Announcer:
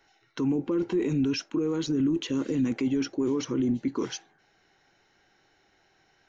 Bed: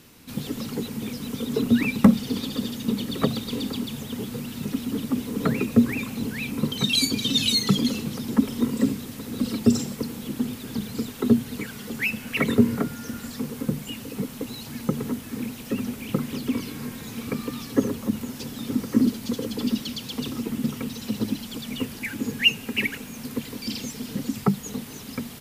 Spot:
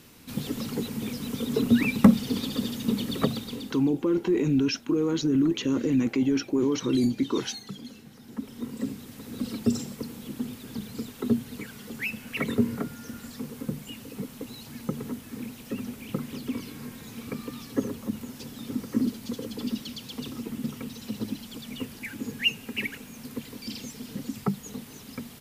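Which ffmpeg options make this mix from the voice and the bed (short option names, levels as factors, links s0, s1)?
-filter_complex "[0:a]adelay=3350,volume=1.33[s0];[1:a]volume=3.98,afade=t=out:st=3.13:d=0.76:silence=0.125893,afade=t=in:st=8.19:d=1.14:silence=0.223872[s1];[s0][s1]amix=inputs=2:normalize=0"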